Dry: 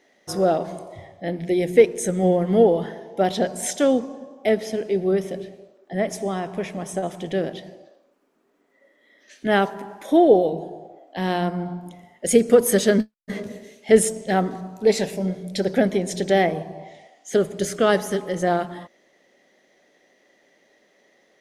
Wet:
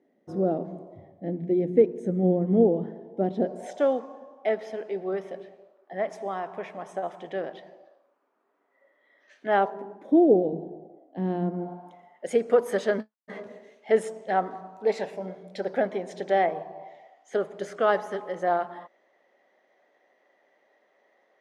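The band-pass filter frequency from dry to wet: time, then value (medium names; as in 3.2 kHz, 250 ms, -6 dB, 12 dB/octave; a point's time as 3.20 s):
band-pass filter, Q 1.2
3.33 s 250 Hz
3.95 s 1 kHz
9.46 s 1 kHz
10.10 s 250 Hz
11.47 s 250 Hz
11.88 s 930 Hz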